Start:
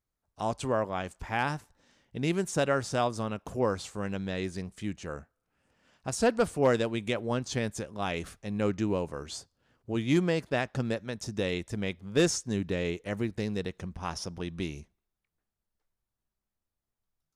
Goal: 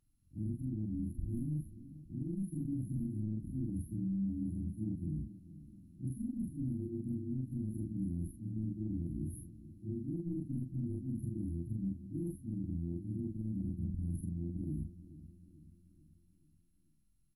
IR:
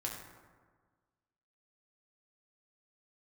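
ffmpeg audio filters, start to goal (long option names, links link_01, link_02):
-filter_complex "[0:a]afftfilt=real='re':imag='-im':win_size=4096:overlap=0.75,highshelf=frequency=4400:gain=3.5,aeval=exprs='0.158*(cos(1*acos(clip(val(0)/0.158,-1,1)))-cos(1*PI/2))+0.02*(cos(3*acos(clip(val(0)/0.158,-1,1)))-cos(3*PI/2))+0.00708*(cos(7*acos(clip(val(0)/0.158,-1,1)))-cos(7*PI/2))':channel_layout=same,acontrast=49,afftfilt=real='re*(1-between(b*sr/4096,350,10000))':imag='im*(1-between(b*sr/4096,350,10000))':win_size=4096:overlap=0.75,areverse,acompressor=threshold=-48dB:ratio=10,areverse,alimiter=level_in=25.5dB:limit=-24dB:level=0:latency=1:release=331,volume=-25.5dB,lowshelf=frequency=370:gain=10,asplit=2[link_01][link_02];[link_02]adelay=435,lowpass=frequency=850:poles=1,volume=-15.5dB,asplit=2[link_03][link_04];[link_04]adelay=435,lowpass=frequency=850:poles=1,volume=0.54,asplit=2[link_05][link_06];[link_06]adelay=435,lowpass=frequency=850:poles=1,volume=0.54,asplit=2[link_07][link_08];[link_08]adelay=435,lowpass=frequency=850:poles=1,volume=0.54,asplit=2[link_09][link_10];[link_10]adelay=435,lowpass=frequency=850:poles=1,volume=0.54[link_11];[link_01][link_03][link_05][link_07][link_09][link_11]amix=inputs=6:normalize=0,volume=12.5dB" -ar 44100 -c:a mp2 -b:a 96k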